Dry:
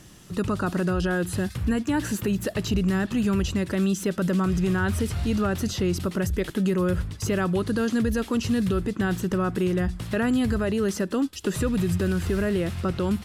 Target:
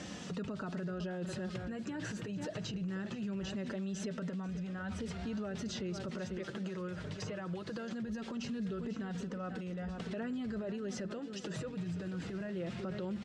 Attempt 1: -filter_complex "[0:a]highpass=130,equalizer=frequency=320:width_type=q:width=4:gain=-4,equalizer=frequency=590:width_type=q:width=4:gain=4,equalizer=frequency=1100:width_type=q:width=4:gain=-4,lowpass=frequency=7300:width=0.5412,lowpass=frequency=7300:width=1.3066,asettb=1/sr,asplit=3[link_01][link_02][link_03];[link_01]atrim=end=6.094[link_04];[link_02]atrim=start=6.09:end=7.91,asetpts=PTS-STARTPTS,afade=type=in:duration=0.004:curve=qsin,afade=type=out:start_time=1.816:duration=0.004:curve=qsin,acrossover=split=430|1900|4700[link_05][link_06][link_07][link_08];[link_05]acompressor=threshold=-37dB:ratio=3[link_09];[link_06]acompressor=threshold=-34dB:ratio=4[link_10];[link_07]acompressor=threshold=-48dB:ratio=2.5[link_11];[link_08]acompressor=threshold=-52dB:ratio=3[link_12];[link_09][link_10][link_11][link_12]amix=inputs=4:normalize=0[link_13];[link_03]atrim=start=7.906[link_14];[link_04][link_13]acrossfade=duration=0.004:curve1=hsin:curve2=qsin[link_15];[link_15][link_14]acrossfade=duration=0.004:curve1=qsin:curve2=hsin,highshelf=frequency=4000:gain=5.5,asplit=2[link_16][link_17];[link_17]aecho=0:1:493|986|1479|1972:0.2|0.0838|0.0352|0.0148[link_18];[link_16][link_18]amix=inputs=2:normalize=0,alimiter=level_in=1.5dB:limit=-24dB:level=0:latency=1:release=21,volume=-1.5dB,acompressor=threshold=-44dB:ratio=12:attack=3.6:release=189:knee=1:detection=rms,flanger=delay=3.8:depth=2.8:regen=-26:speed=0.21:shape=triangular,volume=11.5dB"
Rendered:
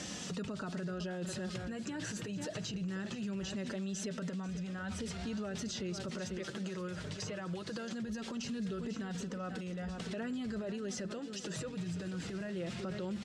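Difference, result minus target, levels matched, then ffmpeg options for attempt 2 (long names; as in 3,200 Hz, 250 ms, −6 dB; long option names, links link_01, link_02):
8,000 Hz band +6.0 dB
-filter_complex "[0:a]highpass=130,equalizer=frequency=320:width_type=q:width=4:gain=-4,equalizer=frequency=590:width_type=q:width=4:gain=4,equalizer=frequency=1100:width_type=q:width=4:gain=-4,lowpass=frequency=7300:width=0.5412,lowpass=frequency=7300:width=1.3066,asettb=1/sr,asplit=3[link_01][link_02][link_03];[link_01]atrim=end=6.094[link_04];[link_02]atrim=start=6.09:end=7.91,asetpts=PTS-STARTPTS,afade=type=in:duration=0.004:curve=qsin,afade=type=out:start_time=1.816:duration=0.004:curve=qsin,acrossover=split=430|1900|4700[link_05][link_06][link_07][link_08];[link_05]acompressor=threshold=-37dB:ratio=3[link_09];[link_06]acompressor=threshold=-34dB:ratio=4[link_10];[link_07]acompressor=threshold=-48dB:ratio=2.5[link_11];[link_08]acompressor=threshold=-52dB:ratio=3[link_12];[link_09][link_10][link_11][link_12]amix=inputs=4:normalize=0[link_13];[link_03]atrim=start=7.906[link_14];[link_04][link_13]acrossfade=duration=0.004:curve1=hsin:curve2=qsin[link_15];[link_15][link_14]acrossfade=duration=0.004:curve1=qsin:curve2=hsin,highshelf=frequency=4000:gain=-6,asplit=2[link_16][link_17];[link_17]aecho=0:1:493|986|1479|1972:0.2|0.0838|0.0352|0.0148[link_18];[link_16][link_18]amix=inputs=2:normalize=0,alimiter=level_in=1.5dB:limit=-24dB:level=0:latency=1:release=21,volume=-1.5dB,acompressor=threshold=-44dB:ratio=12:attack=3.6:release=189:knee=1:detection=rms,flanger=delay=3.8:depth=2.8:regen=-26:speed=0.21:shape=triangular,volume=11.5dB"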